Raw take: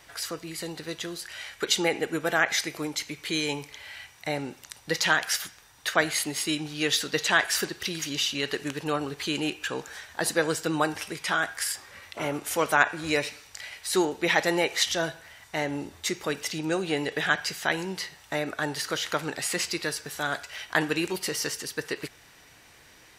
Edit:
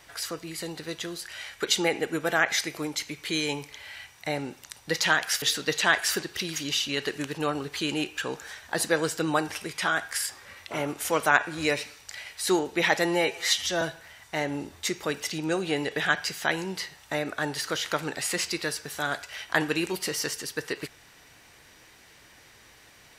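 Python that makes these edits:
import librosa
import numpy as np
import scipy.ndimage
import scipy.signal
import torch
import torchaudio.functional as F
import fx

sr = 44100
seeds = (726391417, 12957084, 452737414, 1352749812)

y = fx.edit(x, sr, fx.cut(start_s=5.42, length_s=1.46),
    fx.stretch_span(start_s=14.51, length_s=0.51, factor=1.5), tone=tone)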